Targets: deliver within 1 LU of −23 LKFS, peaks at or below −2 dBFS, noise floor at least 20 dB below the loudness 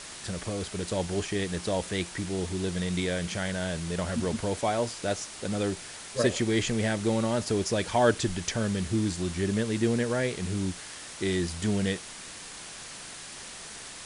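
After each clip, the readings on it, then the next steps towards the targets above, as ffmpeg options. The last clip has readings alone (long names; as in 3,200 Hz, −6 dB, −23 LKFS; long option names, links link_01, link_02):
background noise floor −43 dBFS; target noise floor −50 dBFS; integrated loudness −29.5 LKFS; sample peak −10.0 dBFS; target loudness −23.0 LKFS
→ -af "afftdn=noise_reduction=7:noise_floor=-43"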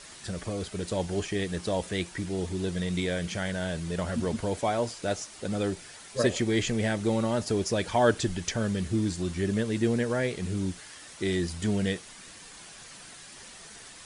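background noise floor −48 dBFS; target noise floor −50 dBFS
→ -af "afftdn=noise_reduction=6:noise_floor=-48"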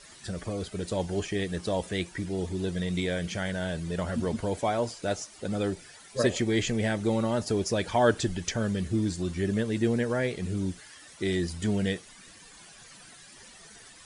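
background noise floor −51 dBFS; integrated loudness −29.5 LKFS; sample peak −10.0 dBFS; target loudness −23.0 LKFS
→ -af "volume=6.5dB"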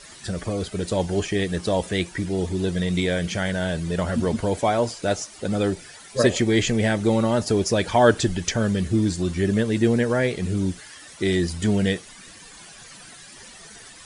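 integrated loudness −23.0 LKFS; sample peak −3.5 dBFS; background noise floor −45 dBFS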